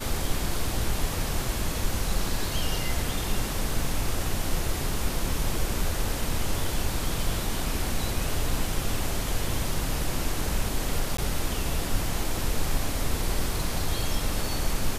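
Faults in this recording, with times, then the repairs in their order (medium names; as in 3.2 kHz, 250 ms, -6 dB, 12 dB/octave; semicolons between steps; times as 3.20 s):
11.17–11.18 s: dropout 14 ms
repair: interpolate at 11.17 s, 14 ms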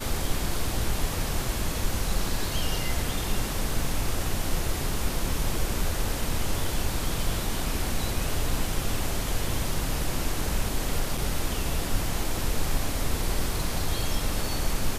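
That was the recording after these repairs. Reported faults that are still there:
nothing left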